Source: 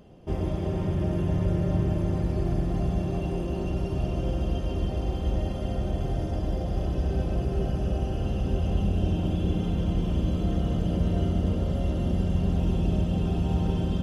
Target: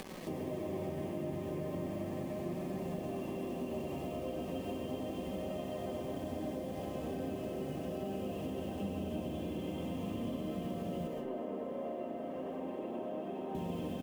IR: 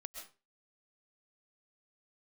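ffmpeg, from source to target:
-filter_complex "[0:a]highpass=frequency=110:width=0.5412,highpass=frequency=110:width=1.3066,equalizer=frequency=120:width_type=q:width=4:gain=-9,equalizer=frequency=260:width_type=q:width=4:gain=7,equalizer=frequency=510:width_type=q:width=4:gain=5,equalizer=frequency=1100:width_type=q:width=4:gain=4,equalizer=frequency=2200:width_type=q:width=4:gain=5,lowpass=frequency=3700:width=0.5412,lowpass=frequency=3700:width=1.3066,aecho=1:1:95|190|285|380|475|570|665|760:0.501|0.291|0.169|0.0978|0.0567|0.0329|0.0191|0.0111,acrusher=bits=7:mix=0:aa=0.000001,asettb=1/sr,asplit=3[link_01][link_02][link_03];[link_01]atrim=end=11.074[link_04];[link_02]atrim=start=11.07:end=13.55,asetpts=PTS-STARTPTS,afade=type=in:duration=0.004:curve=qsin,afade=type=out:start_time=2.476:duration=0.004:curve=qsin,acrossover=split=290 2000:gain=0.0708 1 0.141[link_05][link_06][link_07];[link_05][link_06][link_07]amix=inputs=3:normalize=0[link_08];[link_03]atrim=start=13.546[link_09];[link_04][link_08]acrossfade=duration=0.004:curve1=hsin:curve2=qsin[link_10];[link_10][link_09]acrossfade=duration=0.004:curve1=qsin:curve2=hsin[link_11];[1:a]atrim=start_sample=2205[link_12];[link_11][link_12]afir=irnorm=-1:irlink=0,acompressor=mode=upward:threshold=-34dB:ratio=2.5,bandreject=frequency=1400:width=5.4,acompressor=threshold=-35dB:ratio=3,flanger=delay=5.2:depth=8.8:regen=70:speed=0.37:shape=sinusoidal,volume=3dB"

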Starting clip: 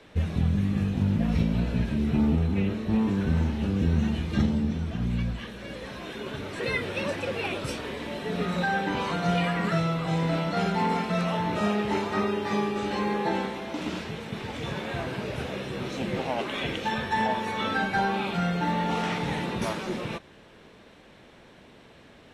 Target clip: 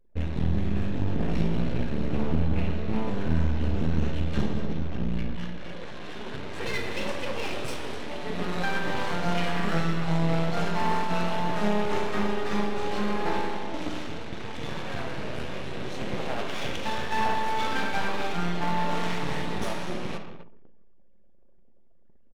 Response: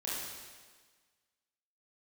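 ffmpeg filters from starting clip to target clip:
-filter_complex "[0:a]aeval=exprs='max(val(0),0)':channel_layout=same,aecho=1:1:253:0.224,asplit=2[link_01][link_02];[1:a]atrim=start_sample=2205[link_03];[link_02][link_03]afir=irnorm=-1:irlink=0,volume=-5dB[link_04];[link_01][link_04]amix=inputs=2:normalize=0,anlmdn=0.158,volume=-1.5dB"

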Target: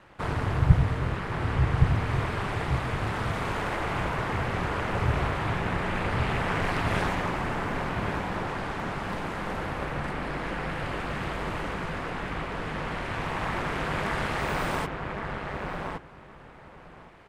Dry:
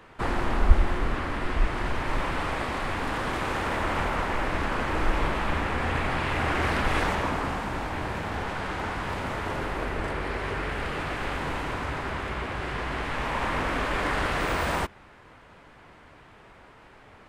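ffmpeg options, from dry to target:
ffmpeg -i in.wav -filter_complex "[0:a]aeval=exprs='val(0)*sin(2*PI*100*n/s)':channel_layout=same,asplit=2[link_01][link_02];[link_02]adelay=1117,lowpass=frequency=1800:poles=1,volume=-3dB,asplit=2[link_03][link_04];[link_04]adelay=1117,lowpass=frequency=1800:poles=1,volume=0.17,asplit=2[link_05][link_06];[link_06]adelay=1117,lowpass=frequency=1800:poles=1,volume=0.17[link_07];[link_01][link_03][link_05][link_07]amix=inputs=4:normalize=0" out.wav

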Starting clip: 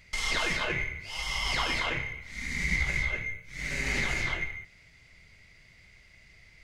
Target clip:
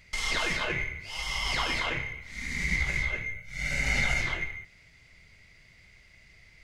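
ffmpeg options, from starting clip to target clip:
ffmpeg -i in.wav -filter_complex "[0:a]asettb=1/sr,asplit=3[link_01][link_02][link_03];[link_01]atrim=end=3.364[link_04];[link_02]atrim=start=3.36:end=4.21,asetpts=PTS-STARTPTS,afade=type=in:duration=0.004:curve=qsin,afade=type=out:start_time=0.846:duration=0.004:curve=qsin,aecho=1:1:1.4:0.65,atrim=end_sample=37485[link_05];[link_03]atrim=start=4.206[link_06];[link_04][link_05]acrossfade=duration=0.004:curve1=hsin:curve2=qsin[link_07];[link_07][link_06]acrossfade=duration=0.004:curve1=qsin:curve2=hsin" out.wav

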